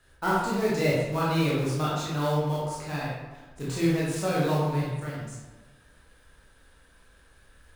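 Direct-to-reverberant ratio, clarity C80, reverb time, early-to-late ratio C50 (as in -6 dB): -7.0 dB, 2.0 dB, 1.2 s, -1.0 dB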